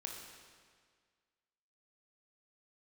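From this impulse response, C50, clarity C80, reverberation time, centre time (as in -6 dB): 2.5 dB, 4.0 dB, 1.8 s, 69 ms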